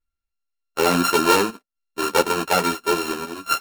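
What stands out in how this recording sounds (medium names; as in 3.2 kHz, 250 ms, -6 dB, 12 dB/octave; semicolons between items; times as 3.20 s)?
a buzz of ramps at a fixed pitch in blocks of 32 samples; chopped level 0.57 Hz, depth 60%, duty 85%; a shimmering, thickened sound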